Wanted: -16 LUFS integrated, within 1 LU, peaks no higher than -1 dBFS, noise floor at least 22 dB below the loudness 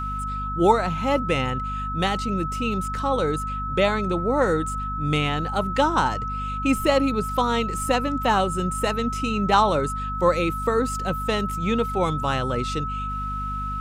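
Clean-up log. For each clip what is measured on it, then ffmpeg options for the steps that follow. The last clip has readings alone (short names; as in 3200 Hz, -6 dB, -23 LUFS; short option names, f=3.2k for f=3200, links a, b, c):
hum 50 Hz; harmonics up to 250 Hz; hum level -29 dBFS; steady tone 1300 Hz; tone level -28 dBFS; loudness -23.5 LUFS; peak -5.5 dBFS; loudness target -16.0 LUFS
-> -af "bandreject=f=50:t=h:w=6,bandreject=f=100:t=h:w=6,bandreject=f=150:t=h:w=6,bandreject=f=200:t=h:w=6,bandreject=f=250:t=h:w=6"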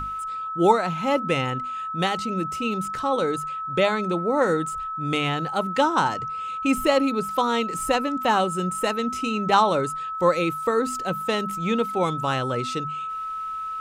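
hum none; steady tone 1300 Hz; tone level -28 dBFS
-> -af "bandreject=f=1.3k:w=30"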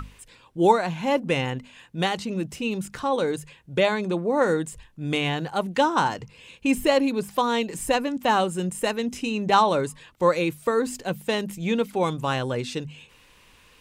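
steady tone none; loudness -24.5 LUFS; peak -5.5 dBFS; loudness target -16.0 LUFS
-> -af "volume=8.5dB,alimiter=limit=-1dB:level=0:latency=1"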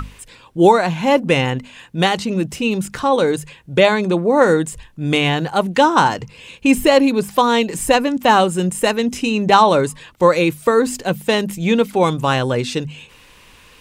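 loudness -16.5 LUFS; peak -1.0 dBFS; noise floor -47 dBFS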